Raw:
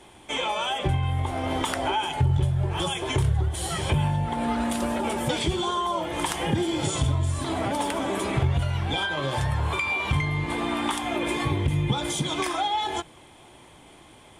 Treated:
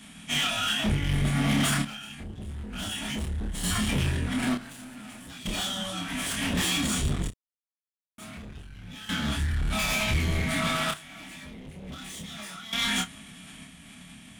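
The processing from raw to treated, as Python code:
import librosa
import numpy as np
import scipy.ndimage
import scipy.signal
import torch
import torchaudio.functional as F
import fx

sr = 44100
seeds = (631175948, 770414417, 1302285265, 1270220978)

p1 = scipy.signal.sosfilt(scipy.signal.cheby1(4, 1.0, [490.0, 1200.0], 'bandstop', fs=sr, output='sos'), x)
p2 = fx.high_shelf(p1, sr, hz=5200.0, db=7.0)
p3 = fx.sample_hold(p2, sr, seeds[0], rate_hz=8900.0, jitter_pct=20)
p4 = p2 + (p3 * librosa.db_to_amplitude(-10.5))
p5 = fx.pitch_keep_formants(p4, sr, semitones=-10.5)
p6 = np.clip(p5, -10.0 ** (-27.5 / 20.0), 10.0 ** (-27.5 / 20.0))
p7 = fx.tremolo_random(p6, sr, seeds[1], hz=1.1, depth_pct=100)
p8 = p7 + fx.room_early_taps(p7, sr, ms=(28, 61), db=(-3.5, -18.0), dry=0)
y = p8 * librosa.db_to_amplitude(4.5)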